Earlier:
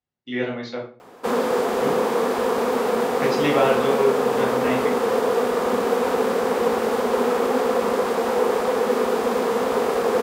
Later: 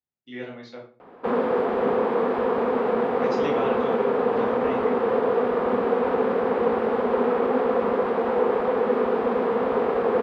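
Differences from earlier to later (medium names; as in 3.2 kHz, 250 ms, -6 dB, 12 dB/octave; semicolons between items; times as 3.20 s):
speech -10.0 dB; background: add distance through air 480 m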